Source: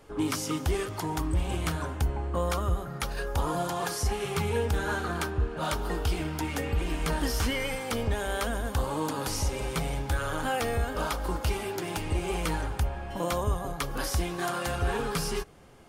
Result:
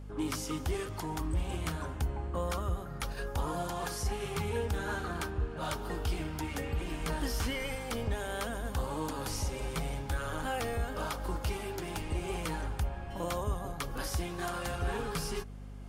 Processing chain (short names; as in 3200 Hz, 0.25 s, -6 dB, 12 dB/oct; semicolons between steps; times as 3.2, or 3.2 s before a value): reverse; upward compressor, threshold -47 dBFS; reverse; hum 50 Hz, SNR 10 dB; gain -5.5 dB